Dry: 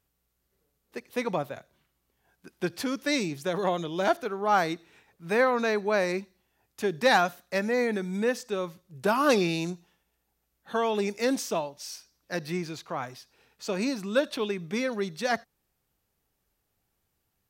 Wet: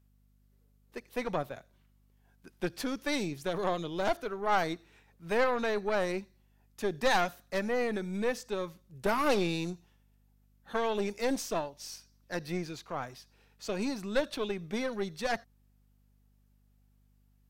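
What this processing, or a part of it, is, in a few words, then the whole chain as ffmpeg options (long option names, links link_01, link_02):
valve amplifier with mains hum: -af "aeval=exprs='(tanh(10*val(0)+0.7)-tanh(0.7))/10':channel_layout=same,aeval=exprs='val(0)+0.000562*(sin(2*PI*50*n/s)+sin(2*PI*2*50*n/s)/2+sin(2*PI*3*50*n/s)/3+sin(2*PI*4*50*n/s)/4+sin(2*PI*5*50*n/s)/5)':channel_layout=same"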